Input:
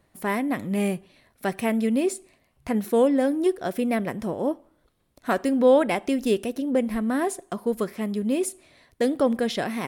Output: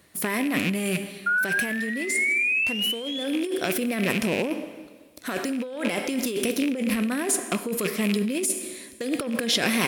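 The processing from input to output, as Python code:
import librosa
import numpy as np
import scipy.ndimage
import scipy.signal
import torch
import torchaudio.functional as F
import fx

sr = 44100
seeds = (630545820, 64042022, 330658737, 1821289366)

p1 = fx.rattle_buzz(x, sr, strikes_db=-38.0, level_db=-27.0)
p2 = fx.spec_paint(p1, sr, seeds[0], shape='rise', start_s=1.26, length_s=1.98, low_hz=1400.0, high_hz=3500.0, level_db=-29.0)
p3 = fx.high_shelf(p2, sr, hz=2400.0, db=7.5)
p4 = np.clip(10.0 ** (19.0 / 20.0) * p3, -1.0, 1.0) / 10.0 ** (19.0 / 20.0)
p5 = p3 + F.gain(torch.from_numpy(p4), -6.0).numpy()
p6 = fx.rev_plate(p5, sr, seeds[1], rt60_s=1.4, hf_ratio=0.95, predelay_ms=0, drr_db=12.0)
p7 = fx.over_compress(p6, sr, threshold_db=-24.0, ratio=-1.0)
p8 = fx.highpass(p7, sr, hz=160.0, slope=6)
y = fx.peak_eq(p8, sr, hz=800.0, db=-6.5, octaves=0.93)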